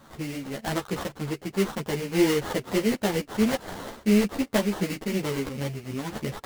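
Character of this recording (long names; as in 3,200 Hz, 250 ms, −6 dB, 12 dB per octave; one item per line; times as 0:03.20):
aliases and images of a low sample rate 2,500 Hz, jitter 20%
a shimmering, thickened sound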